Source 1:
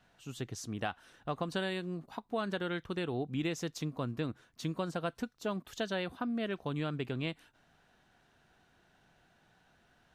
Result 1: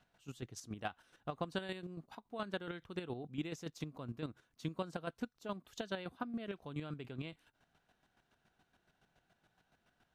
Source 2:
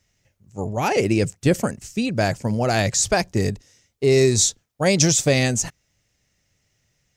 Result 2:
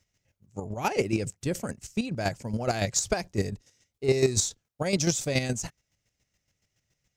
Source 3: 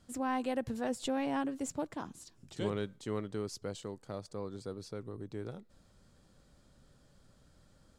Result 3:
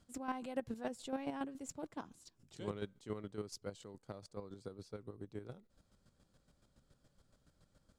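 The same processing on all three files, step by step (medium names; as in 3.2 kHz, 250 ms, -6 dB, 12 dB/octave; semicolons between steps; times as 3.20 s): in parallel at -12 dB: one-sided clip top -23 dBFS; on the sum: square tremolo 7.1 Hz, depth 60%, duty 25%; band-stop 1.8 kHz, Q 26; trim -5 dB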